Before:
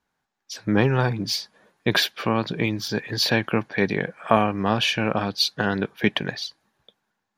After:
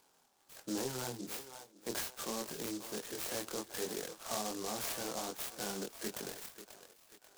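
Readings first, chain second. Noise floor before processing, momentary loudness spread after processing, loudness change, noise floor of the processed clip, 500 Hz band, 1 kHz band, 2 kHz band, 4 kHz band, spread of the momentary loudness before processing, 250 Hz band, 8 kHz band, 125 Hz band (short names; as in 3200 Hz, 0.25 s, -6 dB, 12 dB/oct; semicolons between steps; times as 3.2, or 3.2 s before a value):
-80 dBFS, 13 LU, -16.5 dB, -70 dBFS, -16.5 dB, -18.0 dB, -21.5 dB, -18.5 dB, 8 LU, -19.0 dB, -4.0 dB, -26.0 dB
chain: HPF 140 Hz; three-band isolator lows -13 dB, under 290 Hz, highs -14 dB, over 2400 Hz; on a send: thinning echo 0.539 s, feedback 43%, high-pass 420 Hz, level -16 dB; on the sum: upward compressor, threshold -46 dBFS; dynamic EQ 3600 Hz, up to +6 dB, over -48 dBFS, Q 2.1; soft clip -17 dBFS, distortion -12 dB; limiter -22.5 dBFS, peak gain reduction 5.5 dB; chorus 1.3 Hz, depth 2.7 ms; noise-modulated delay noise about 5600 Hz, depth 0.14 ms; gain -5.5 dB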